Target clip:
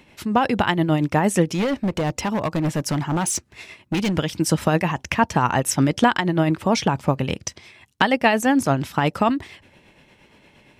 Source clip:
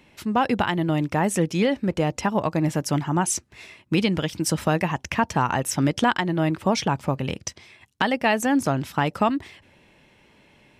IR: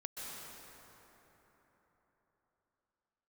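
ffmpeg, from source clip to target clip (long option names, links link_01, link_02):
-filter_complex "[0:a]tremolo=f=8.6:d=0.43,asplit=3[link_01][link_02][link_03];[link_01]afade=type=out:start_time=1.47:duration=0.02[link_04];[link_02]asoftclip=type=hard:threshold=-23dB,afade=type=in:start_time=1.47:duration=0.02,afade=type=out:start_time=4.16:duration=0.02[link_05];[link_03]afade=type=in:start_time=4.16:duration=0.02[link_06];[link_04][link_05][link_06]amix=inputs=3:normalize=0,volume=5dB"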